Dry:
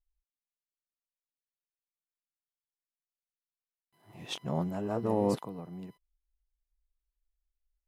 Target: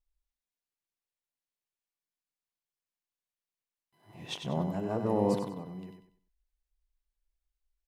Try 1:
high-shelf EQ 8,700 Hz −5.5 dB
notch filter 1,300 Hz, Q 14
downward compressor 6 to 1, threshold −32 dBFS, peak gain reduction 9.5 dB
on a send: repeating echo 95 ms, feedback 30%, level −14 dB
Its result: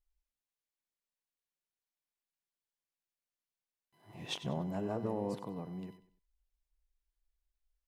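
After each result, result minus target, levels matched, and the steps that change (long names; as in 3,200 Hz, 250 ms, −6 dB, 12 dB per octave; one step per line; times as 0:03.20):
downward compressor: peak gain reduction +9.5 dB; echo-to-direct −6.5 dB
remove: downward compressor 6 to 1, threshold −32 dBFS, peak gain reduction 9.5 dB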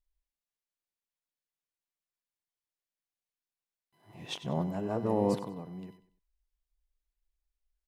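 echo-to-direct −6.5 dB
change: repeating echo 95 ms, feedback 30%, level −7.5 dB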